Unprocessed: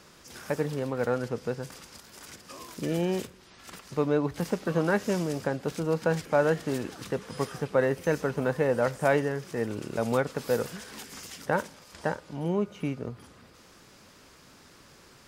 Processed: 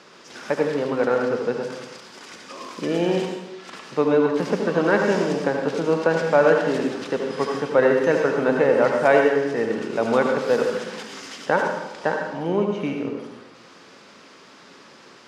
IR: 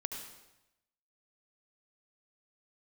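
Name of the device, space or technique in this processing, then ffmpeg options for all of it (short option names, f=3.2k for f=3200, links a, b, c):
supermarket ceiling speaker: -filter_complex "[0:a]highpass=240,lowpass=5k[a];[1:a]atrim=start_sample=2205[b];[a][b]afir=irnorm=-1:irlink=0,volume=8.5dB"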